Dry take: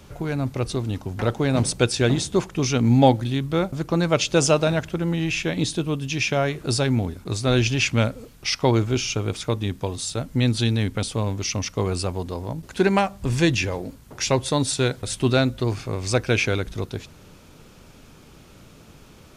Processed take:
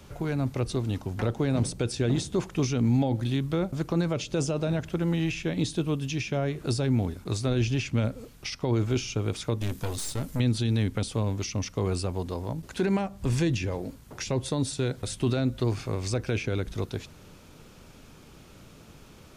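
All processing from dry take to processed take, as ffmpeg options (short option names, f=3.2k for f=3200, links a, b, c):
-filter_complex "[0:a]asettb=1/sr,asplit=3[a][b][c];[a]atrim=end=9.614[d];[b]atrim=start=9.61:end=10.4,asetpts=PTS-STARTPTS,afade=t=in:d=0.004:c=qsin,afade=t=out:st=0.786:d=0.004:c=qsin,highshelf=f=6.5k:g=11,acontrast=22,aeval=exprs='(tanh(14.1*val(0)+0.55)-tanh(0.55))/14.1':c=same[e];[c]atrim=start=10.396[f];[d][e]acrossfade=d=0.004:c1=hsin:c2=qsin[g];[g][f]acrossfade=d=0.004:c1=qsin:c2=hsin,alimiter=limit=-13.5dB:level=0:latency=1:release=21,acrossover=split=490[h][i];[i]acompressor=threshold=-31dB:ratio=6[j];[h][j]amix=inputs=2:normalize=0,volume=-2.5dB"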